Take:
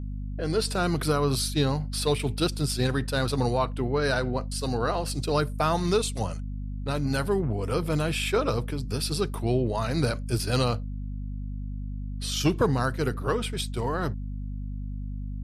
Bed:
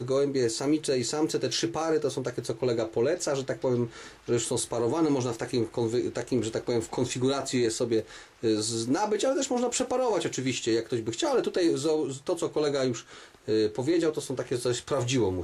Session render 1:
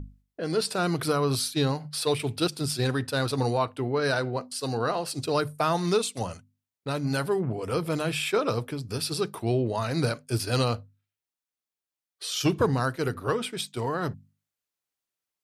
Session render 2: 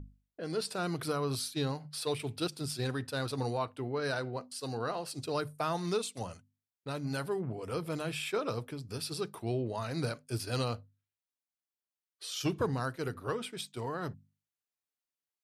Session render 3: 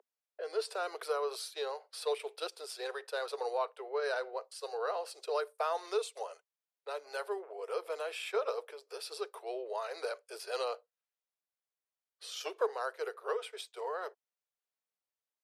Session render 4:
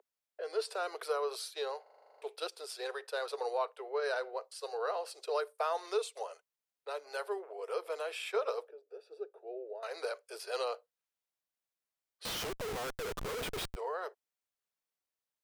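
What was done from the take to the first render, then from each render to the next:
hum notches 50/100/150/200/250 Hz
trim -8 dB
steep high-pass 420 Hz 72 dB/octave; tilt EQ -2 dB/octave
1.82 s: stutter in place 0.04 s, 10 plays; 8.68–9.83 s: boxcar filter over 42 samples; 12.25–13.76 s: Schmitt trigger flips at -47 dBFS

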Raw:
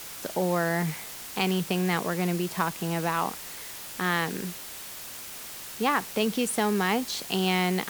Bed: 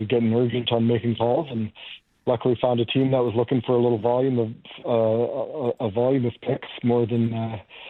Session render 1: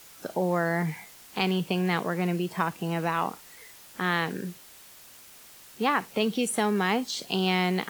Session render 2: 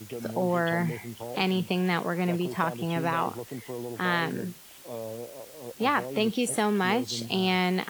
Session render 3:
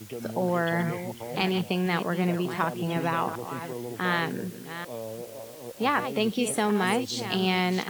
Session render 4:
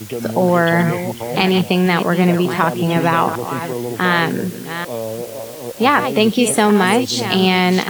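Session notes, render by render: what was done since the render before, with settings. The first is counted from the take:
noise print and reduce 10 dB
add bed -16.5 dB
chunks repeated in reverse 373 ms, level -10 dB
trim +12 dB; peak limiter -1 dBFS, peak gain reduction 2.5 dB

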